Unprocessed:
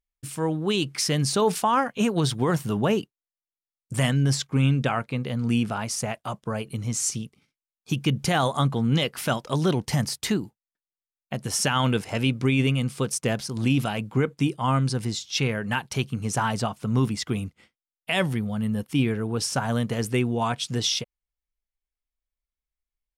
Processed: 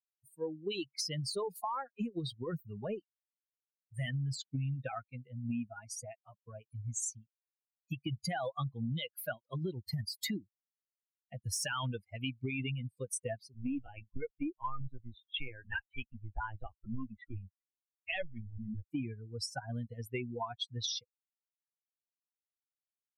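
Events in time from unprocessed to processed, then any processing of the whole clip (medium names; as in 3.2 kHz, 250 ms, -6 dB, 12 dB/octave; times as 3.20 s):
1.20–4.02 s: partial rectifier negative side -3 dB
10.15–11.92 s: waveshaping leveller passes 1
13.54–18.90 s: LPC vocoder at 8 kHz pitch kept
whole clip: expander on every frequency bin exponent 3; peak limiter -24.5 dBFS; compression, threshold -34 dBFS; trim +1 dB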